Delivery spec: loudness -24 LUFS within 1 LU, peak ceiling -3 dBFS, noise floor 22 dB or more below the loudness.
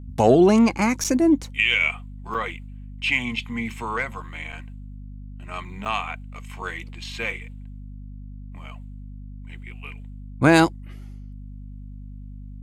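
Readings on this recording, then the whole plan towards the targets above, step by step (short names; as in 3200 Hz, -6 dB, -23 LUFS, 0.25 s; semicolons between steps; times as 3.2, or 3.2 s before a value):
dropouts 4; longest dropout 7.0 ms; hum 50 Hz; harmonics up to 250 Hz; hum level -35 dBFS; loudness -21.5 LUFS; peak -4.0 dBFS; loudness target -24.0 LUFS
-> interpolate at 1.04/2.34/4.52/5.85, 7 ms; de-hum 50 Hz, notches 5; gain -2.5 dB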